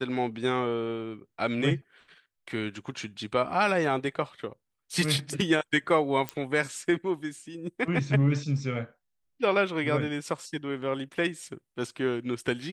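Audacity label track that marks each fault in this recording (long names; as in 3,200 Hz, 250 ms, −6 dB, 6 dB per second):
6.290000	6.290000	click −15 dBFS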